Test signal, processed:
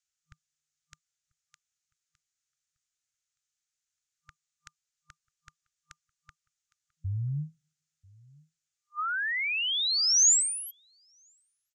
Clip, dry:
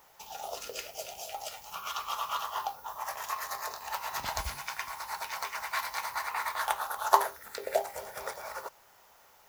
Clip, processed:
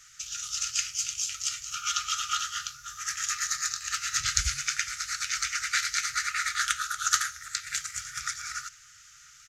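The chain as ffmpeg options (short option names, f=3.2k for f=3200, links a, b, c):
-filter_complex "[0:a]lowpass=f=6.8k:t=q:w=3.7,asplit=2[a][b];[b]asoftclip=type=hard:threshold=-13dB,volume=-12dB[c];[a][c]amix=inputs=2:normalize=0,asplit=2[d][e];[e]adelay=991.3,volume=-25dB,highshelf=f=4k:g=-22.3[f];[d][f]amix=inputs=2:normalize=0,afftfilt=real='re*(1-between(b*sr/4096,160,1200))':imag='im*(1-between(b*sr/4096,160,1200))':win_size=4096:overlap=0.75,volume=4.5dB"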